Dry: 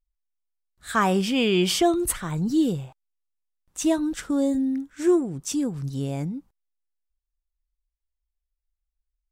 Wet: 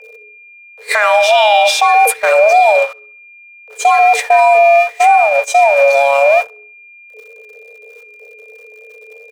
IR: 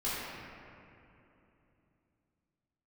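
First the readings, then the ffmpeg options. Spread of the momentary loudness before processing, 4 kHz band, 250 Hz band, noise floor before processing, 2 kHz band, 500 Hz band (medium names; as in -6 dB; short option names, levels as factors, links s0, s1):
10 LU, +11.0 dB, under -35 dB, -83 dBFS, +21.0 dB, +17.0 dB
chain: -filter_complex "[0:a]aeval=exprs='val(0)+0.5*0.0237*sgn(val(0))':c=same,acompressor=threshold=0.0447:ratio=4,afreqshift=420,highpass=160,bandreject=f=60:t=h:w=6,bandreject=f=120:t=h:w=6,bandreject=f=180:t=h:w=6,bandreject=f=240:t=h:w=6,bandreject=f=300:t=h:w=6,bandreject=f=360:t=h:w=6,bandreject=f=420:t=h:w=6,bandreject=f=480:t=h:w=6,acrossover=split=480|3000[s0][s1][s2];[s0]acompressor=threshold=0.00794:ratio=3[s3];[s3][s1][s2]amix=inputs=3:normalize=0,highshelf=f=2100:g=-2.5,asplit=2[s4][s5];[s5]adelay=66,lowpass=f=4500:p=1,volume=0.2,asplit=2[s6][s7];[s7]adelay=66,lowpass=f=4500:p=1,volume=0.52,asplit=2[s8][s9];[s9]adelay=66,lowpass=f=4500:p=1,volume=0.52,asplit=2[s10][s11];[s11]adelay=66,lowpass=f=4500:p=1,volume=0.52,asplit=2[s12][s13];[s13]adelay=66,lowpass=f=4500:p=1,volume=0.52[s14];[s4][s6][s8][s10][s12][s14]amix=inputs=6:normalize=0,aeval=exprs='val(0)+0.0178*sin(2*PI*2400*n/s)':c=same,highshelf=f=8400:g=-9.5,agate=range=0.0501:threshold=0.0282:ratio=16:detection=peak,alimiter=level_in=17.8:limit=0.891:release=50:level=0:latency=1,volume=0.891"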